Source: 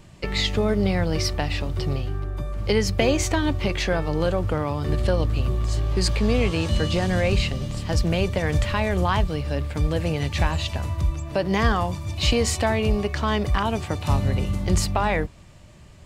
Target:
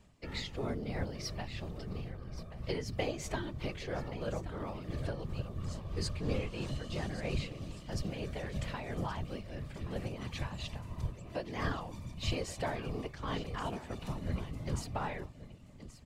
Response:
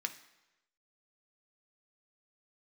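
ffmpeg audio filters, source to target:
-af "tremolo=f=3:d=0.5,aecho=1:1:1126:0.211,afftfilt=real='hypot(re,im)*cos(2*PI*random(0))':imag='hypot(re,im)*sin(2*PI*random(1))':win_size=512:overlap=0.75,volume=-7.5dB"

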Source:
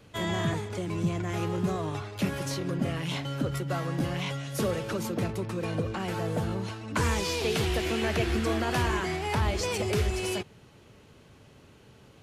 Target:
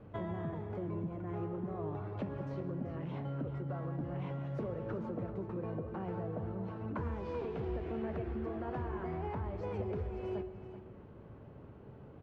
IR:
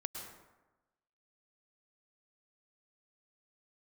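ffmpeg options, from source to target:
-filter_complex "[0:a]lowpass=1000,acompressor=threshold=-39dB:ratio=6,aecho=1:1:384:0.251,asplit=2[link_01][link_02];[1:a]atrim=start_sample=2205[link_03];[link_02][link_03]afir=irnorm=-1:irlink=0,volume=-5dB[link_04];[link_01][link_04]amix=inputs=2:normalize=0,flanger=delay=9.4:depth=8.8:regen=78:speed=0.31:shape=triangular,volume=3.5dB"

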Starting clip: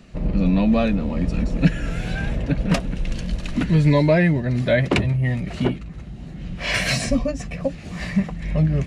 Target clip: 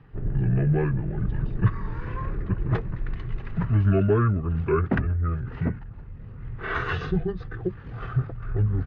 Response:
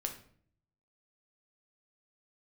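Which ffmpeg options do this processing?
-af "lowpass=3000,asetrate=29433,aresample=44100,atempo=1.49831,volume=-4dB"

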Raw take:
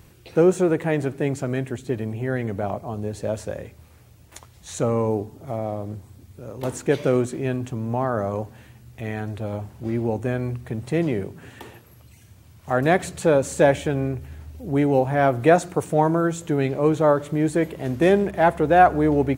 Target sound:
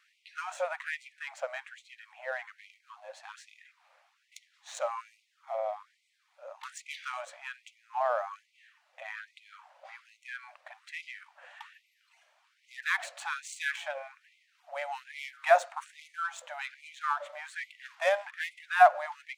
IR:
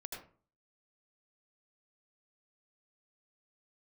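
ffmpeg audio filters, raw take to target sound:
-af "adynamicsmooth=sensitivity=4.5:basefreq=3600,adynamicequalizer=threshold=0.0141:dfrequency=350:dqfactor=5.9:tfrequency=350:tqfactor=5.9:attack=5:release=100:ratio=0.375:range=2.5:mode=cutabove:tftype=bell,afftfilt=real='re*gte(b*sr/1024,510*pow(2000/510,0.5+0.5*sin(2*PI*1.2*pts/sr)))':imag='im*gte(b*sr/1024,510*pow(2000/510,0.5+0.5*sin(2*PI*1.2*pts/sr)))':win_size=1024:overlap=0.75,volume=-2.5dB"

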